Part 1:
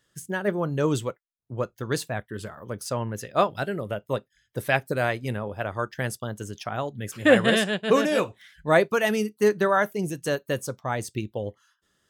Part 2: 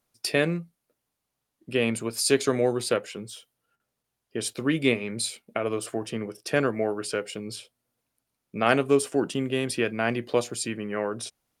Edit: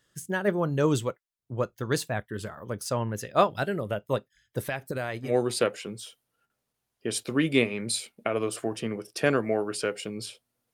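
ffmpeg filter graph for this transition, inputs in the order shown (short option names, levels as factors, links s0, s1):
-filter_complex "[0:a]asettb=1/sr,asplit=3[s0][s1][s2];[s0]atrim=end=4.604[s3];[s1]atrim=start=4.6:end=5.36,asetpts=PTS-STARTPTS,afade=t=in:d=0.004:c=qsin,afade=t=out:st=0.756:d=0.004:c=qsin,acompressor=threshold=0.0447:ratio=6:attack=3.2:release=140:knee=1:detection=peak[s4];[s2]atrim=start=5.356[s5];[s3][s4]acrossfade=d=0.004:c1=hsin:c2=qsin[s6];[s6][s5]acrossfade=d=0.004:c1=qsin:c2=hsin,apad=whole_dur=10.73,atrim=end=10.73,atrim=end=5.36,asetpts=PTS-STARTPTS[s7];[1:a]atrim=start=2.52:end=8.03,asetpts=PTS-STARTPTS[s8];[s7][s8]acrossfade=d=0.14:c1=tri:c2=tri"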